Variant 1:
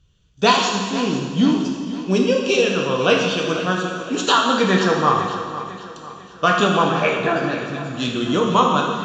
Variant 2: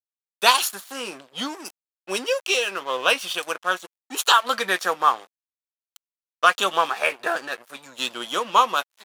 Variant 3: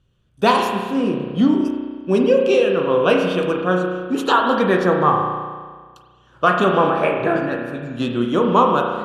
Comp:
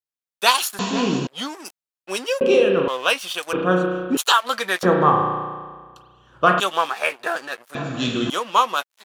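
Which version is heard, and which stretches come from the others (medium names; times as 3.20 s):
2
0.79–1.27 s: from 1
2.41–2.88 s: from 3
3.53–4.17 s: from 3
4.83–6.60 s: from 3
7.75–8.30 s: from 1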